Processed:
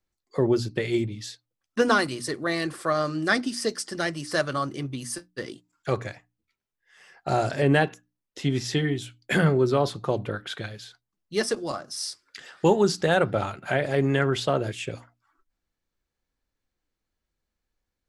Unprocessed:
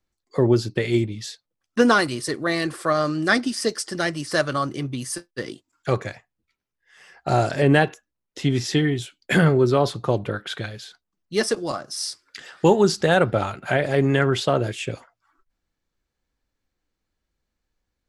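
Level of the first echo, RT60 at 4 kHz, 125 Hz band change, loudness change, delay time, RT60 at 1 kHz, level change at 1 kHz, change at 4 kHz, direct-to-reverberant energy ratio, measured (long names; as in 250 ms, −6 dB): no echo audible, no reverb audible, −4.5 dB, −4.0 dB, no echo audible, no reverb audible, −3.5 dB, −3.5 dB, no reverb audible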